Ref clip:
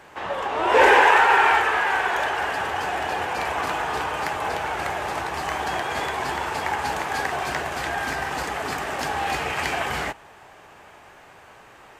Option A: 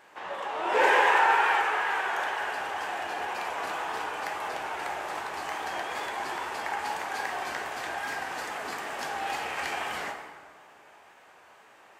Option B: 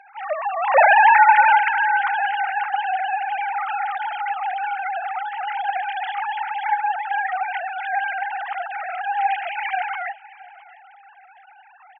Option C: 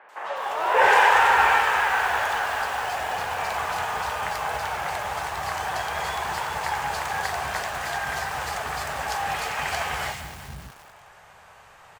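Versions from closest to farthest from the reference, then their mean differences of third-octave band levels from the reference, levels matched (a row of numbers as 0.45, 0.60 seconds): A, C, B; 2.5, 4.5, 19.0 decibels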